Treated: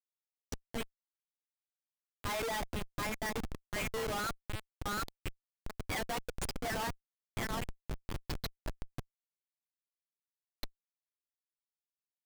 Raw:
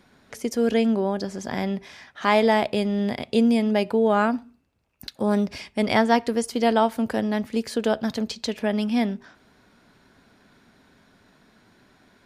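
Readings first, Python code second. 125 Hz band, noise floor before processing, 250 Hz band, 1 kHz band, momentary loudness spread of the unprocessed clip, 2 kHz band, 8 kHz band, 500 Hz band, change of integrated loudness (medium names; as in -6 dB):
-10.5 dB, -60 dBFS, -23.5 dB, -15.0 dB, 10 LU, -11.0 dB, -5.0 dB, -20.0 dB, -16.0 dB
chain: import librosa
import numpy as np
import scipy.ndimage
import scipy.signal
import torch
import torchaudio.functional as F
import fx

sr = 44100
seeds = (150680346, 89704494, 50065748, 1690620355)

y = fx.bin_expand(x, sr, power=3.0)
y = scipy.signal.sosfilt(scipy.signal.butter(2, 1100.0, 'highpass', fs=sr, output='sos'), y)
y = fx.transient(y, sr, attack_db=-4, sustain_db=7)
y = fx.echo_stepped(y, sr, ms=729, hz=1500.0, octaves=0.7, feedback_pct=70, wet_db=-1)
y = fx.schmitt(y, sr, flips_db=-36.0)
y = F.gain(torch.from_numpy(y), 4.5).numpy()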